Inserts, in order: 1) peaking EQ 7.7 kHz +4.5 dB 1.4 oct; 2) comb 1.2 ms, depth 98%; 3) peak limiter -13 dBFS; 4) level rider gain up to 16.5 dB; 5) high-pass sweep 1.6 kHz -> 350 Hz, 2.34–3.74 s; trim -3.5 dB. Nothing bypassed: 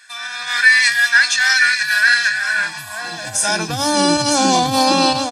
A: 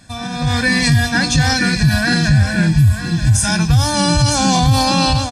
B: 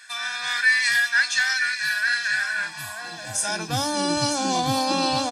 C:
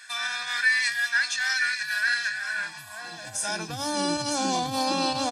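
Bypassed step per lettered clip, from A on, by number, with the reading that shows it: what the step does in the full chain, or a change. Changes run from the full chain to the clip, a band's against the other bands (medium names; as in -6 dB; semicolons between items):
5, 125 Hz band +21.0 dB; 3, mean gain reduction 1.5 dB; 4, loudness change -11.5 LU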